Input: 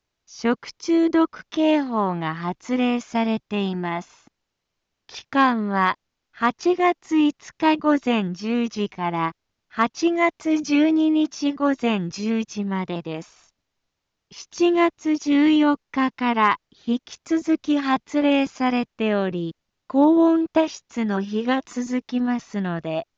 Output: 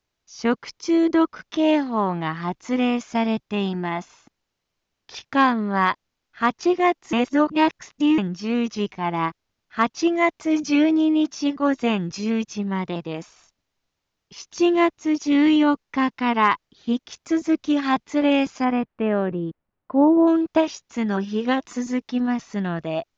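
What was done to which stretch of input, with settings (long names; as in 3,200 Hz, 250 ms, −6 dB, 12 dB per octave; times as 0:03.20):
0:07.13–0:08.18: reverse
0:18.64–0:20.26: low-pass filter 2,000 Hz → 1,200 Hz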